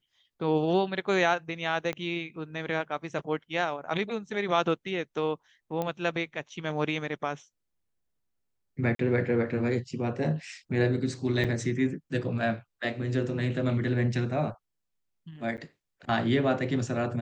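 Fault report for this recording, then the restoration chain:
1.93 pop -20 dBFS
5.82 pop -18 dBFS
8.95–8.99 gap 43 ms
11.44–11.45 gap 5.5 ms
15.57–15.58 gap 9 ms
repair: de-click; interpolate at 8.95, 43 ms; interpolate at 11.44, 5.5 ms; interpolate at 15.57, 9 ms

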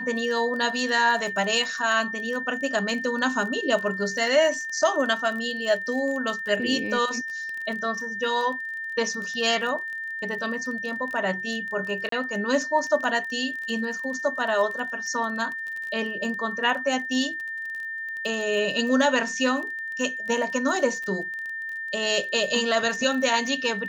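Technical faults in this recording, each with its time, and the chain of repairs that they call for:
crackle 25/s -31 dBFS
tone 1800 Hz -30 dBFS
12.09–12.12 gap 33 ms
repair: de-click; notch 1800 Hz, Q 30; interpolate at 12.09, 33 ms

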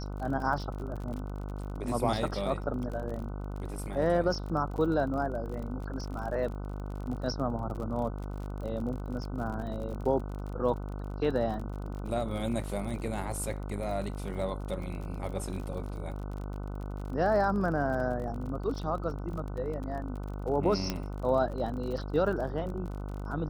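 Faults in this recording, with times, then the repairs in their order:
buzz 50 Hz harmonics 30 -37 dBFS
crackle 40/s -38 dBFS
20.9 pop -15 dBFS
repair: de-click; de-hum 50 Hz, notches 30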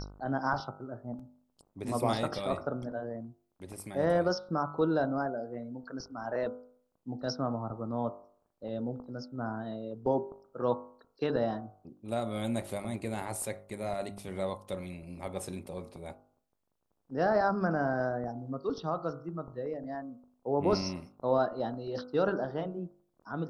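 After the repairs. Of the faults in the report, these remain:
none

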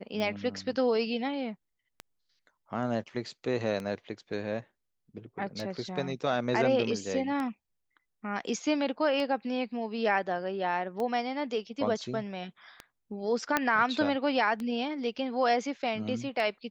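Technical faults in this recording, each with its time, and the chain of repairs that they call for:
tick 33 1/3 rpm -22 dBFS
13.57 pop -10 dBFS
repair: de-click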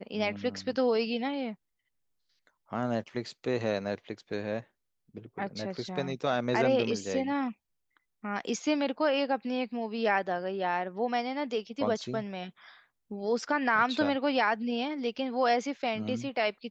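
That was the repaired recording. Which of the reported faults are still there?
13.57 pop

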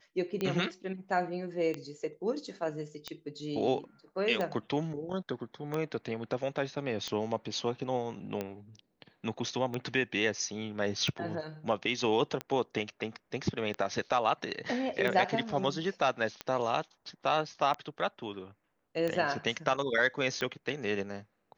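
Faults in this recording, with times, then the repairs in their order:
tick 45 rpm -20 dBFS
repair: de-click

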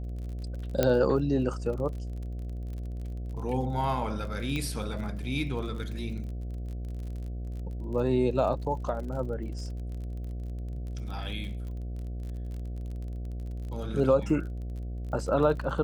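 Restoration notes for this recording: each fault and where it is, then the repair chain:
buzz 60 Hz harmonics 12 -35 dBFS
crackle 36/s -38 dBFS
0.83 pop -10 dBFS
4.56 pop -20 dBFS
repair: de-click; de-hum 60 Hz, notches 12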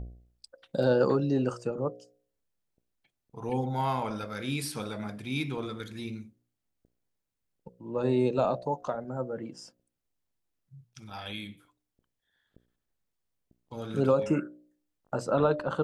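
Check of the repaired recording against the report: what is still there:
0.83 pop
4.56 pop

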